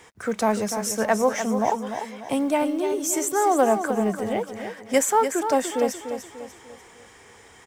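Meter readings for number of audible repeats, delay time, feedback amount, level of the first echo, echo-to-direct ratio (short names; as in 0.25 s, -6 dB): 4, 0.295 s, 42%, -8.5 dB, -7.5 dB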